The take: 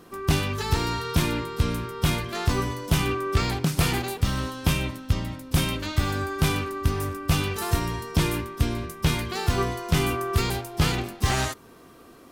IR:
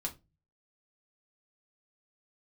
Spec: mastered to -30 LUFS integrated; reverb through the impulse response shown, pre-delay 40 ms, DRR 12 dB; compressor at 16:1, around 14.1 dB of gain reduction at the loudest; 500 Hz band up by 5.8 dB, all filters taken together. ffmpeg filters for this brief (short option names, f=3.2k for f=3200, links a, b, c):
-filter_complex "[0:a]equalizer=f=500:t=o:g=8,acompressor=threshold=-30dB:ratio=16,asplit=2[a][b];[1:a]atrim=start_sample=2205,adelay=40[c];[b][c]afir=irnorm=-1:irlink=0,volume=-12.5dB[d];[a][d]amix=inputs=2:normalize=0,volume=5dB"